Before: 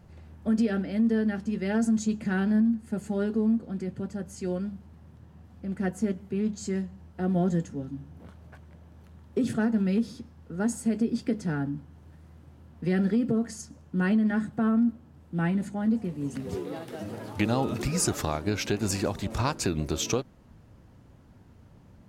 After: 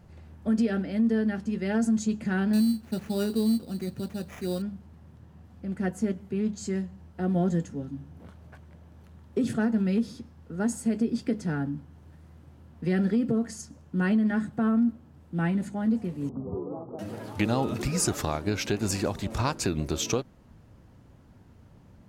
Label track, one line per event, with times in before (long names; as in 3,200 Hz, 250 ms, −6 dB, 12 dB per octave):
2.530000	4.620000	sample-rate reduction 4,300 Hz
16.290000	16.990000	Butterworth low-pass 1,200 Hz 72 dB per octave